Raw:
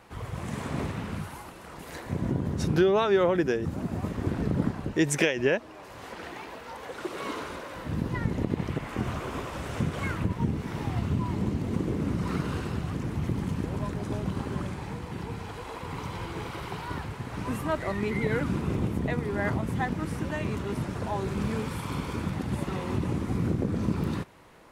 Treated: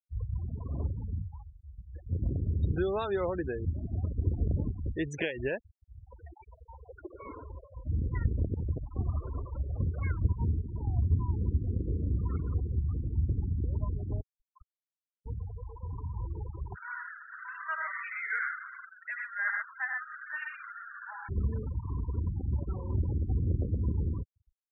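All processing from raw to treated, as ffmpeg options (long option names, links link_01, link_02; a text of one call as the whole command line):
ffmpeg -i in.wav -filter_complex "[0:a]asettb=1/sr,asplit=3[link_01][link_02][link_03];[link_01]atrim=end=14.214[link_04];[link_02]atrim=start=14.21:end=15.26,asetpts=PTS-STARTPTS,afade=type=in:duration=0.004:curve=qsin,afade=type=out:start_time=1.046:duration=0.004:curve=qsin,highpass=frequency=990:width=0.5412,highpass=frequency=990:width=1.3066,aeval=exprs='clip(val(0),-1,0.0075)':channel_layout=same[link_05];[link_03]atrim=start=15.256[link_06];[link_04][link_05]acrossfade=duration=0.004:curve1=hsin:curve2=qsin[link_07];[link_07][link_06]acrossfade=duration=0.004:curve1=qsin:curve2=hsin,asettb=1/sr,asplit=3[link_08][link_09][link_10];[link_08]atrim=end=16.754[link_11];[link_09]atrim=start=16.75:end=21.29,asetpts=PTS-STARTPTS,afade=type=in:duration=0.004:curve=qsin,afade=type=out:start_time=4.536:duration=0.004:curve=qsin,highpass=frequency=1500:width_type=q:width=4.1,aecho=1:1:81|123|440:0.596|0.668|0.133,atrim=end_sample=200214[link_12];[link_10]atrim=start=21.286[link_13];[link_11][link_12]acrossfade=duration=0.004:curve1=hsin:curve2=qsin[link_14];[link_14][link_13]acrossfade=duration=0.004:curve1=qsin:curve2=hsin,lowpass=frequency=6300:width=0.5412,lowpass=frequency=6300:width=1.3066,lowshelf=frequency=110:width_type=q:width=1.5:gain=13,afftfilt=real='re*gte(hypot(re,im),0.0501)':imag='im*gte(hypot(re,im),0.0501)':win_size=1024:overlap=0.75,volume=-7.5dB" out.wav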